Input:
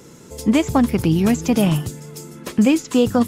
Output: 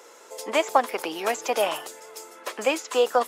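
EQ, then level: HPF 550 Hz 24 dB/oct; high shelf 2500 Hz -8.5 dB; +4.0 dB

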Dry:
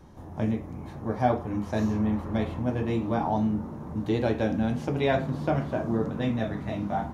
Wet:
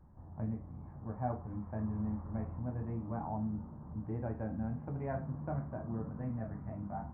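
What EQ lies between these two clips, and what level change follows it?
Gaussian blur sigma 6.9 samples; bell 390 Hz -11.5 dB 1.7 oct; -5.5 dB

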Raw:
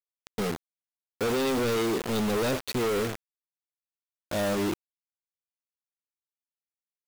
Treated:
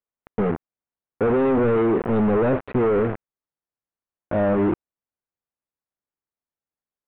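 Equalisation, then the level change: Gaussian blur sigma 4.6 samples; air absorption 130 m; +8.5 dB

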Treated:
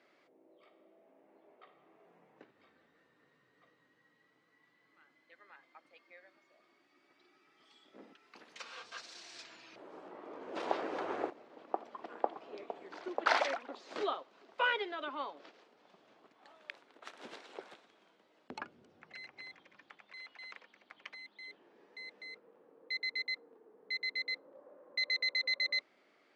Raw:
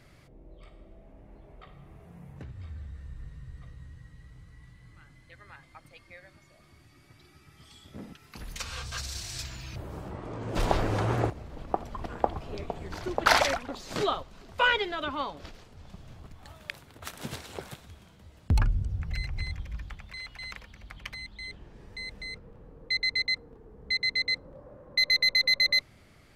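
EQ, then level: HPF 300 Hz 24 dB/oct; air absorption 96 m; high shelf 6200 Hz -6.5 dB; -6.5 dB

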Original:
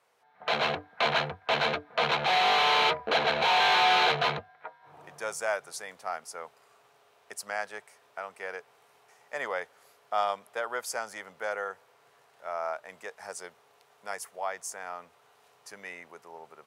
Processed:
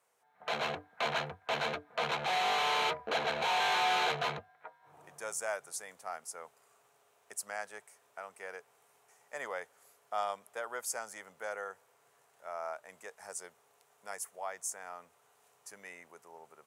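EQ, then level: resonant high shelf 5800 Hz +6.5 dB, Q 1.5; -6.5 dB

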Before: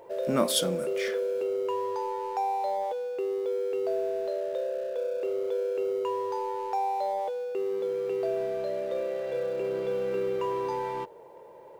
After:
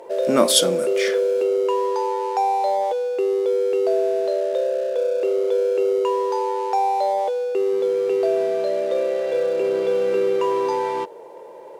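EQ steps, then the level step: air absorption 58 m; RIAA curve recording; bell 310 Hz +8.5 dB 2.6 oct; +5.5 dB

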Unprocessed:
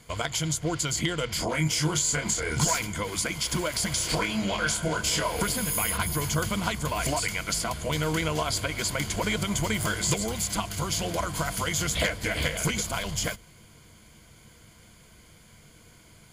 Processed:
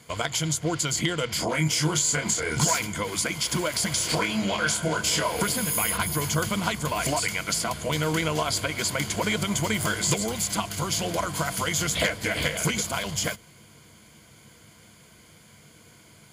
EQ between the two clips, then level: HPF 99 Hz 12 dB/oct; +2.0 dB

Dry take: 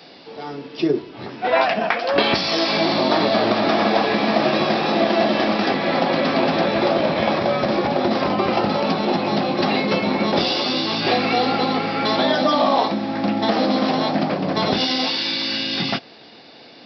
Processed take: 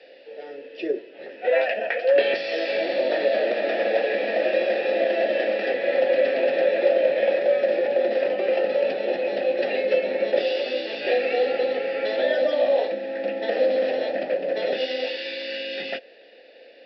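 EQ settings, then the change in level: vowel filter e; HPF 230 Hz 12 dB/oct; +6.5 dB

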